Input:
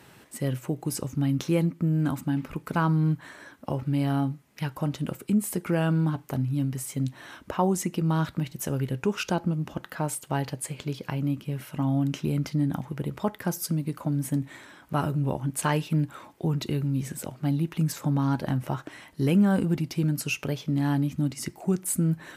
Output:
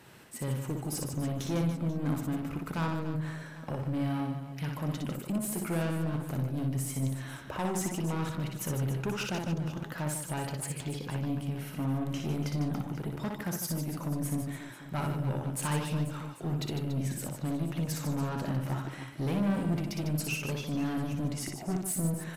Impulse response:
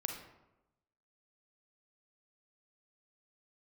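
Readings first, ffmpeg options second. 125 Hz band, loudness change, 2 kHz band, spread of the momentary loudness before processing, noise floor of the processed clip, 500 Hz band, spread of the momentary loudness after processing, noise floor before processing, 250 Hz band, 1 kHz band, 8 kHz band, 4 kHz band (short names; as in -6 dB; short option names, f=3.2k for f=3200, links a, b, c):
-5.5 dB, -5.5 dB, -4.0 dB, 8 LU, -44 dBFS, -5.5 dB, 5 LU, -54 dBFS, -6.0 dB, -6.0 dB, -2.5 dB, -3.0 dB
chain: -filter_complex "[0:a]asoftclip=type=tanh:threshold=-25.5dB,asplit=2[a][b];[b]aecho=0:1:60|150|285|487.5|791.2:0.631|0.398|0.251|0.158|0.1[c];[a][c]amix=inputs=2:normalize=0,volume=-3dB"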